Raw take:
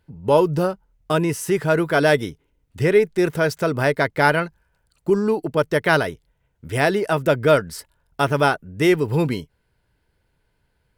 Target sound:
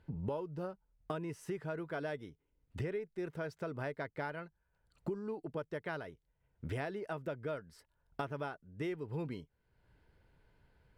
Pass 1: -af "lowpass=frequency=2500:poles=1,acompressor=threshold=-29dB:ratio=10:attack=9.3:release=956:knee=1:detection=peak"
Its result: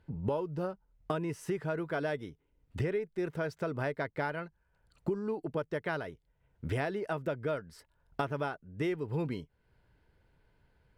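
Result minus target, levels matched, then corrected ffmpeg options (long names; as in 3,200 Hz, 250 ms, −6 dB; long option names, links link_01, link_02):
downward compressor: peak gain reduction −6 dB
-af "lowpass=frequency=2500:poles=1,acompressor=threshold=-35.5dB:ratio=10:attack=9.3:release=956:knee=1:detection=peak"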